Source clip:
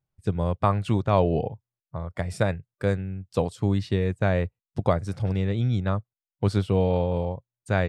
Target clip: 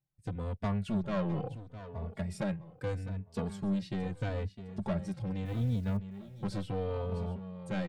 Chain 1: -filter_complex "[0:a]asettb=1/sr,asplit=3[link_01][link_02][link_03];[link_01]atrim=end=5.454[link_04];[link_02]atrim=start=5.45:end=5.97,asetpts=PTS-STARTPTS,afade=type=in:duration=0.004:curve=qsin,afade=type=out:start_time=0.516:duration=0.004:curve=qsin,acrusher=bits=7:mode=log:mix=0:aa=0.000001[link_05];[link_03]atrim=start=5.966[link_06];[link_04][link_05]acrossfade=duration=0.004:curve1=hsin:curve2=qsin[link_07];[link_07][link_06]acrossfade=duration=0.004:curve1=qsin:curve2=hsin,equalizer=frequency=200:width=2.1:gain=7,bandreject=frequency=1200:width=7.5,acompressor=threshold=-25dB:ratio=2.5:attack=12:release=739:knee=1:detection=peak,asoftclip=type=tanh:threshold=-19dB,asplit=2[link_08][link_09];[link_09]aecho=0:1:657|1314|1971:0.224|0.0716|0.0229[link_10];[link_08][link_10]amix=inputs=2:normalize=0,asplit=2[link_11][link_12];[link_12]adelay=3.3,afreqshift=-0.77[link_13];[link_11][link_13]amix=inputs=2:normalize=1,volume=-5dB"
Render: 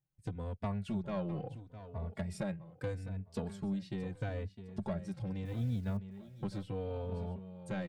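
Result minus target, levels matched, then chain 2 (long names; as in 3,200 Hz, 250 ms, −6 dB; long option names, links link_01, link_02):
downward compressor: peak gain reduction +9 dB
-filter_complex "[0:a]asettb=1/sr,asplit=3[link_01][link_02][link_03];[link_01]atrim=end=5.454[link_04];[link_02]atrim=start=5.45:end=5.97,asetpts=PTS-STARTPTS,afade=type=in:duration=0.004:curve=qsin,afade=type=out:start_time=0.516:duration=0.004:curve=qsin,acrusher=bits=7:mode=log:mix=0:aa=0.000001[link_05];[link_03]atrim=start=5.966[link_06];[link_04][link_05]acrossfade=duration=0.004:curve1=hsin:curve2=qsin[link_07];[link_07][link_06]acrossfade=duration=0.004:curve1=qsin:curve2=hsin,equalizer=frequency=200:width=2.1:gain=7,bandreject=frequency=1200:width=7.5,asoftclip=type=tanh:threshold=-19dB,asplit=2[link_08][link_09];[link_09]aecho=0:1:657|1314|1971:0.224|0.0716|0.0229[link_10];[link_08][link_10]amix=inputs=2:normalize=0,asplit=2[link_11][link_12];[link_12]adelay=3.3,afreqshift=-0.77[link_13];[link_11][link_13]amix=inputs=2:normalize=1,volume=-5dB"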